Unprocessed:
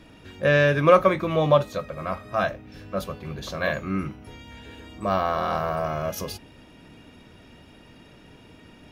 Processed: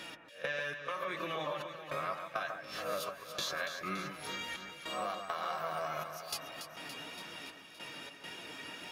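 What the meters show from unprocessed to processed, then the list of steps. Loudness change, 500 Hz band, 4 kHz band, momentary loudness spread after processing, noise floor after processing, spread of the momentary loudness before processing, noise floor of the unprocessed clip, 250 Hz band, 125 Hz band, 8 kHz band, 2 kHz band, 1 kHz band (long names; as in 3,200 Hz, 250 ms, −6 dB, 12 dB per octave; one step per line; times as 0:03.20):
−15.5 dB, −17.5 dB, −3.0 dB, 8 LU, −53 dBFS, 23 LU, −51 dBFS, −18.5 dB, −23.5 dB, −2.5 dB, −10.0 dB, −11.5 dB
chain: peak hold with a rise ahead of every peak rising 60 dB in 0.40 s
brickwall limiter −15 dBFS, peak gain reduction 11.5 dB
high-pass filter 1,500 Hz 6 dB per octave
gate pattern "x..xx.xxxx" 102 BPM −24 dB
reverb reduction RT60 0.54 s
downward compressor 6 to 1, threshold −46 dBFS, peak gain reduction 18.5 dB
flanger 1.8 Hz, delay 5.3 ms, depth 2.1 ms, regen +40%
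on a send: delay that swaps between a low-pass and a high-pass 142 ms, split 2,100 Hz, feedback 80%, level −7 dB
on the sum: level +14 dB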